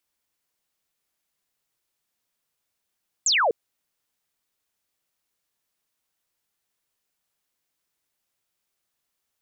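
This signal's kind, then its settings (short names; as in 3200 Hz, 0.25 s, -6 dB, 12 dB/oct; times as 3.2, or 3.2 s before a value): laser zap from 8000 Hz, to 410 Hz, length 0.25 s sine, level -17.5 dB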